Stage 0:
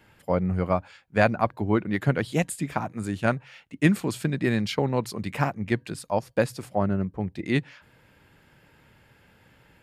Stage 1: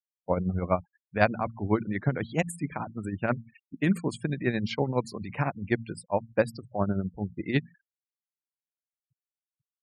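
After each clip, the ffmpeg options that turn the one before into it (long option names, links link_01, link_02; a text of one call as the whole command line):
ffmpeg -i in.wav -af "bandreject=frequency=56.97:width_type=h:width=4,bandreject=frequency=113.94:width_type=h:width=4,bandreject=frequency=170.91:width_type=h:width=4,bandreject=frequency=227.88:width_type=h:width=4,afftfilt=real='re*gte(hypot(re,im),0.0178)':imag='im*gte(hypot(re,im),0.0178)':win_size=1024:overlap=0.75,tremolo=f=12:d=0.64" out.wav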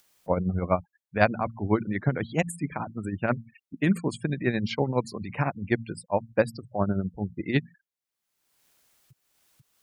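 ffmpeg -i in.wav -af "acompressor=mode=upward:threshold=-43dB:ratio=2.5,volume=1.5dB" out.wav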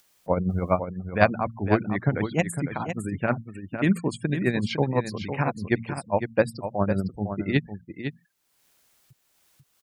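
ffmpeg -i in.wav -af "aecho=1:1:505:0.376,volume=1.5dB" out.wav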